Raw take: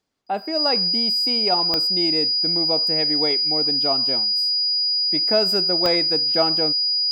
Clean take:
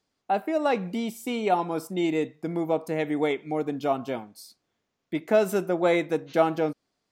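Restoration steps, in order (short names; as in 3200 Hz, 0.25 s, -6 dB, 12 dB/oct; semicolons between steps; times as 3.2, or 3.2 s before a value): de-click; notch 4900 Hz, Q 30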